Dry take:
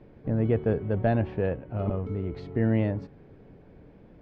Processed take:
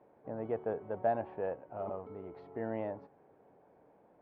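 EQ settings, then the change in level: band-pass filter 820 Hz, Q 2; 0.0 dB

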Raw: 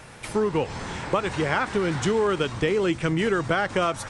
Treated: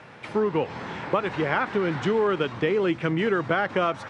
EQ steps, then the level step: band-pass 140–3100 Hz; 0.0 dB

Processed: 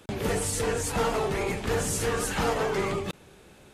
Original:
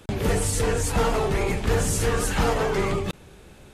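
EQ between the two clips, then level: bass shelf 92 Hz -11 dB; -2.5 dB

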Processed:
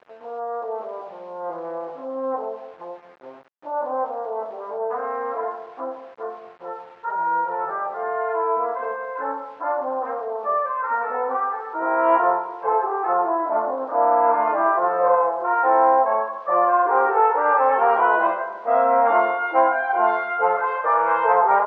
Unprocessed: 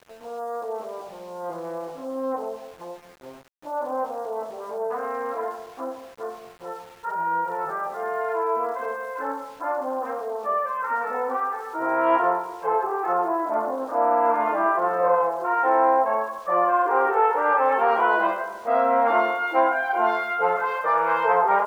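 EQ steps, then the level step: band-pass filter 830 Hz, Q 0.58; distance through air 100 m; +3.5 dB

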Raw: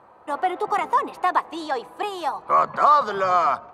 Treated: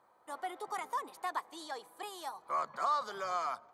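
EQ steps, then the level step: pre-emphasis filter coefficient 0.8; bass shelf 100 Hz -10.5 dB; band-stop 2.7 kHz, Q 6.5; -3.5 dB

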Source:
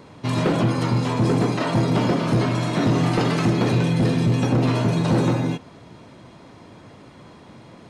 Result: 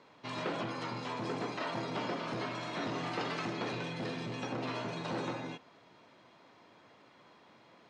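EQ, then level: high-pass 820 Hz 6 dB/octave; low-pass 7.7 kHz 12 dB/octave; distance through air 72 m; -8.5 dB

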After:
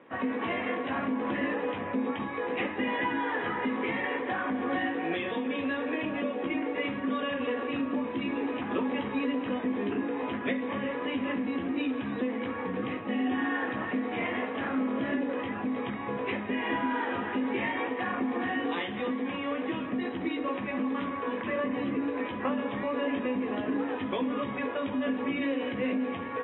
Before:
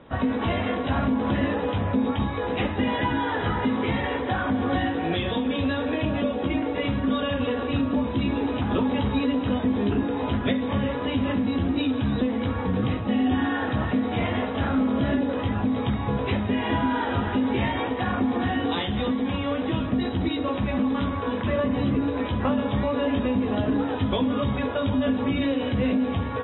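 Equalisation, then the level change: distance through air 100 m; cabinet simulation 420–2500 Hz, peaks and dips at 430 Hz -4 dB, 620 Hz -8 dB, 1.4 kHz -8 dB; peaking EQ 860 Hz -7.5 dB 0.53 oct; +3.0 dB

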